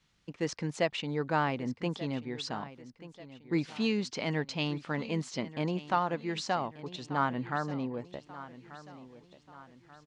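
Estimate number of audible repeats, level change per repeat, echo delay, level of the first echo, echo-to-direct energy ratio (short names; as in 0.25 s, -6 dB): 3, -7.0 dB, 1.186 s, -16.0 dB, -15.0 dB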